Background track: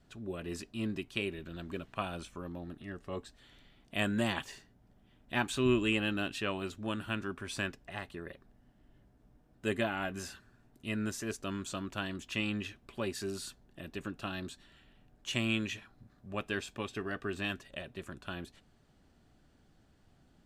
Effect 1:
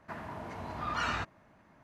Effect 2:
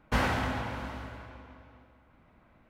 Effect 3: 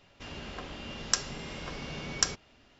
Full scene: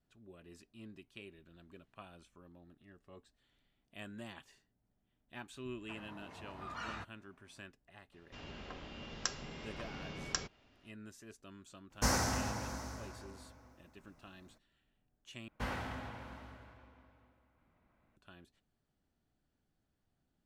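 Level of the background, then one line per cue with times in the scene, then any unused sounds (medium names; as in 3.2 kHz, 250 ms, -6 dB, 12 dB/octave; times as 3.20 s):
background track -16.5 dB
5.80 s: add 1 -11 dB
8.12 s: add 3 -6.5 dB + treble shelf 6.5 kHz -9 dB
11.90 s: add 2 -4.5 dB, fades 0.02 s + resonant high shelf 4.3 kHz +11 dB, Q 3
15.48 s: replace with 2 -12 dB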